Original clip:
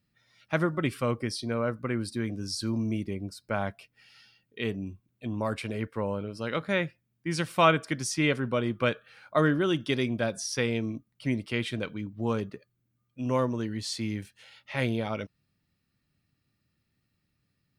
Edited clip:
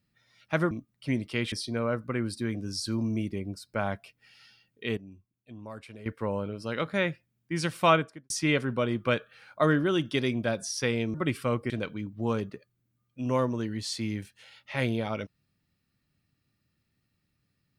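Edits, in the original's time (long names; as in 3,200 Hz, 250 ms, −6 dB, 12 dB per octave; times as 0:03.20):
0:00.71–0:01.27: swap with 0:10.89–0:11.70
0:04.72–0:05.81: clip gain −12 dB
0:07.62–0:08.05: fade out and dull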